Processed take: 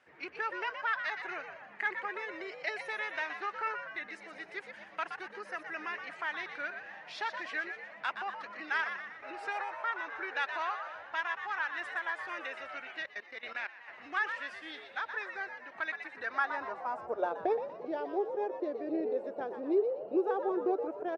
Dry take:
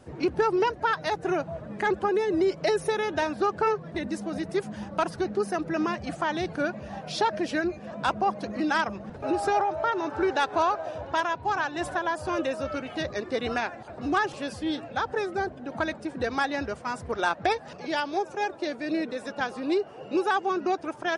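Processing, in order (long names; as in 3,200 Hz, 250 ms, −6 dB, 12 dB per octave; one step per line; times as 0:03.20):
echo with shifted repeats 121 ms, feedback 46%, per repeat +110 Hz, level −8.5 dB
0:13.00–0:13.88: output level in coarse steps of 15 dB
band-pass filter sweep 2,000 Hz → 460 Hz, 0:16.07–0:17.38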